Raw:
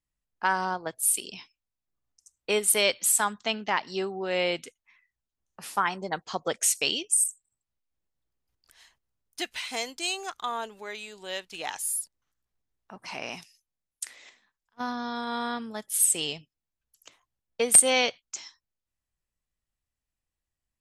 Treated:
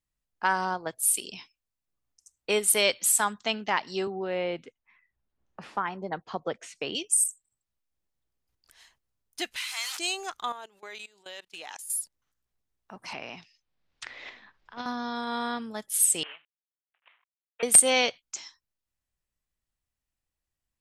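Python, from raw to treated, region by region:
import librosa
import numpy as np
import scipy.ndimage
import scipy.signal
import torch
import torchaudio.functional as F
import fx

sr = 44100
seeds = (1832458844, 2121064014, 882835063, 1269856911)

y = fx.chain(x, sr, fx.spacing_loss(db_at_10k=31),
    fx.band_squash(depth_pct=40), at=(4.07, 6.95))
y = fx.chain(y, sr, fx.delta_mod(bps=64000, step_db=-34.0),
    fx.highpass(hz=1100.0, slope=24),
    fx.sustainer(db_per_s=35.0), at=(9.56, 9.99))
y = fx.chain(y, sr, fx.low_shelf(hz=270.0, db=-12.0),
    fx.level_steps(step_db=21), at=(10.52, 11.9))
y = fx.chain(y, sr, fx.lowpass(hz=4600.0, slope=24),
    fx.band_squash(depth_pct=100), at=(13.13, 14.86))
y = fx.chain(y, sr, fx.cvsd(bps=16000),
    fx.highpass(hz=1200.0, slope=12), at=(16.23, 17.63))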